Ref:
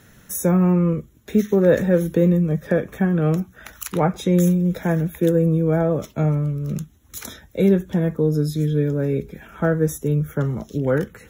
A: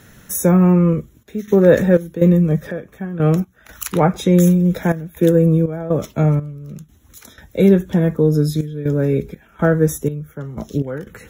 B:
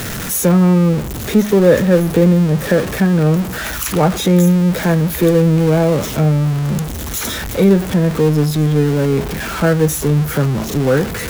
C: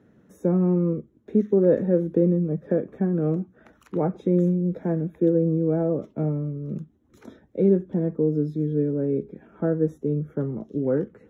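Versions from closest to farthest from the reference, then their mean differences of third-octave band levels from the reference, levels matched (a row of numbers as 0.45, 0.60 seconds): A, C, B; 3.5, 7.0, 9.5 decibels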